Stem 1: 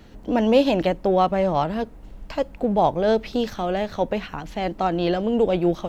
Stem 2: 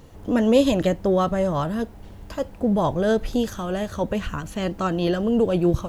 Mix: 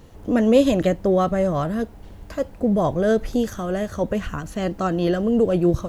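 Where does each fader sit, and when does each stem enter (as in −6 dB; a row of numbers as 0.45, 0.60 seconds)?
−10.5, −0.5 decibels; 0.00, 0.00 seconds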